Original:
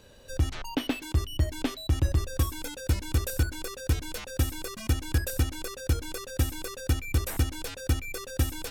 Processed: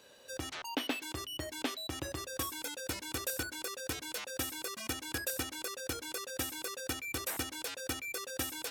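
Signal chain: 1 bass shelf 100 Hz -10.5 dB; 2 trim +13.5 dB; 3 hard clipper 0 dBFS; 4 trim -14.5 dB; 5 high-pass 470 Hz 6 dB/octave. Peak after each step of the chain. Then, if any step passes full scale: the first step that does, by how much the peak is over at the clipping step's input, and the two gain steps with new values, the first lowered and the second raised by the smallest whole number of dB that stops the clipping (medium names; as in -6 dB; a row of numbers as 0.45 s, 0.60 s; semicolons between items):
-15.0 dBFS, -1.5 dBFS, -1.5 dBFS, -16.0 dBFS, -17.5 dBFS; nothing clips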